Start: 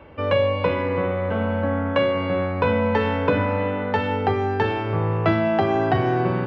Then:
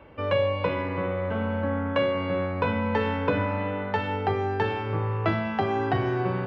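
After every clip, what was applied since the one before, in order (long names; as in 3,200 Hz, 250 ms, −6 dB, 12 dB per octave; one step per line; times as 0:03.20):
hum removal 82.53 Hz, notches 10
level −4 dB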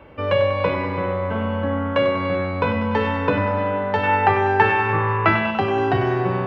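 gain on a spectral selection 0:04.03–0:05.51, 790–3,000 Hz +8 dB
on a send: feedback echo with a high-pass in the loop 97 ms, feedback 66%, high-pass 230 Hz, level −8.5 dB
on the sum: level +4.5 dB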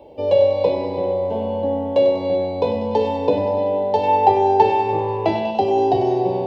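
drawn EQ curve 160 Hz 0 dB, 430 Hz +12 dB, 870 Hz +11 dB, 1,300 Hz −22 dB, 4,100 Hz +12 dB
level −7 dB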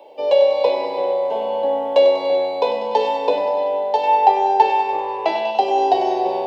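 high-pass filter 660 Hz 12 dB per octave
speech leveller 2 s
level +4 dB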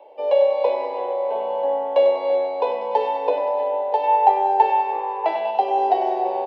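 three-way crossover with the lows and the highs turned down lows −13 dB, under 370 Hz, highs −15 dB, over 2,500 Hz
slap from a distant wall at 110 metres, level −14 dB
level −1.5 dB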